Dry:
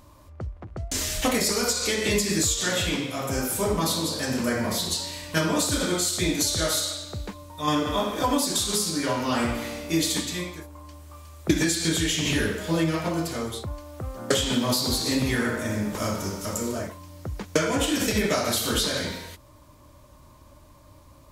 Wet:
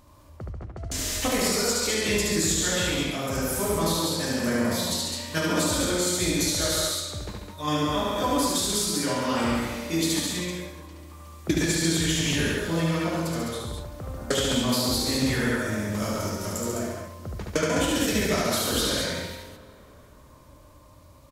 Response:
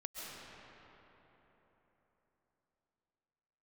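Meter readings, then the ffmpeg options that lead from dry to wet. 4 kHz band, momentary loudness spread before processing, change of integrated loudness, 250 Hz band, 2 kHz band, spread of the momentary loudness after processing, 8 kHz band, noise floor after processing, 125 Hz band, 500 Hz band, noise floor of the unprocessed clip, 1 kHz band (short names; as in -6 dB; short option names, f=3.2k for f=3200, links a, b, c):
-0.5 dB, 14 LU, 0.0 dB, 0.0 dB, 0.0 dB, 14 LU, 0.0 dB, -51 dBFS, +0.5 dB, 0.0 dB, -52 dBFS, 0.0 dB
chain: -filter_complex "[0:a]aecho=1:1:72.89|139.9|207:0.708|0.501|0.562,asplit=2[a][b];[1:a]atrim=start_sample=2205,adelay=60[c];[b][c]afir=irnorm=-1:irlink=0,volume=-17dB[d];[a][d]amix=inputs=2:normalize=0,volume=-3.5dB"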